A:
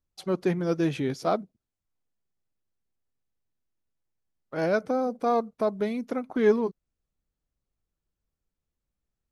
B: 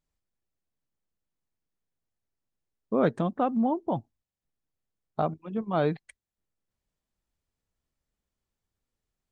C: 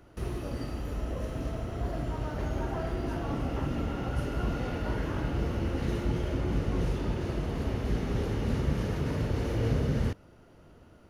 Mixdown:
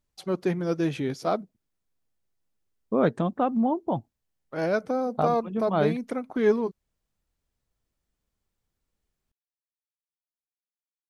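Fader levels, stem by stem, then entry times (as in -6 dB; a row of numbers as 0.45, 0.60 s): -0.5 dB, +1.5 dB, off; 0.00 s, 0.00 s, off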